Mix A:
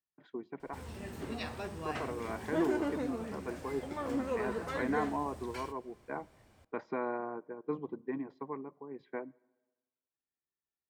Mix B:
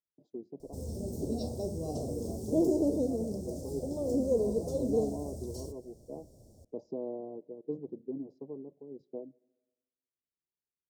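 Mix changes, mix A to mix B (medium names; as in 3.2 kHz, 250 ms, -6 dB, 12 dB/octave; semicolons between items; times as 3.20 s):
background +7.5 dB; master: add Chebyshev band-stop 590–5500 Hz, order 3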